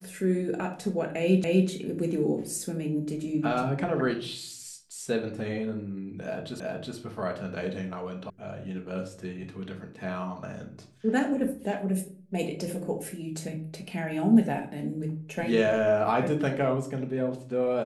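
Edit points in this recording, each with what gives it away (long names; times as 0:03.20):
0:01.44: the same again, the last 0.25 s
0:06.60: the same again, the last 0.37 s
0:08.30: cut off before it has died away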